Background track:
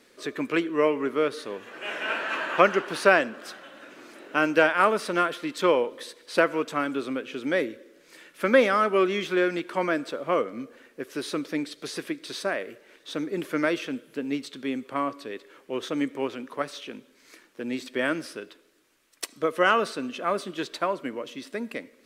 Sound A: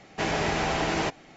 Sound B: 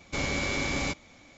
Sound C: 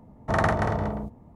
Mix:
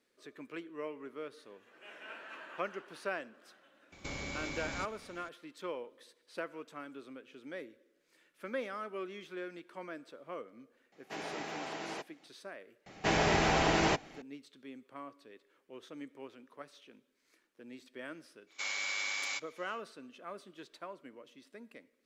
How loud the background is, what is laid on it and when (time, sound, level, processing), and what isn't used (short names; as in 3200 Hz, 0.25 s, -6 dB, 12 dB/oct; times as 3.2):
background track -19 dB
3.92 add B -2.5 dB + compressor, threshold -35 dBFS
10.92 add A -14 dB + HPF 230 Hz
12.86 add A -1.5 dB
18.46 add B -3.5 dB, fades 0.10 s + HPF 1300 Hz
not used: C